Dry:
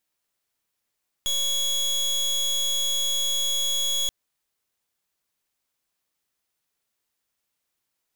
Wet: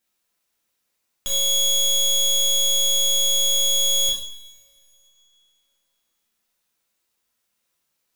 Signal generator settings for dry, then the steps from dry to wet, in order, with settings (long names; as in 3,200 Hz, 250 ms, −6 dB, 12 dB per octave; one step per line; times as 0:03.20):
pulse wave 3,350 Hz, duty 28% −24.5 dBFS 2.83 s
coupled-rooms reverb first 0.6 s, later 2.6 s, from −22 dB, DRR −3 dB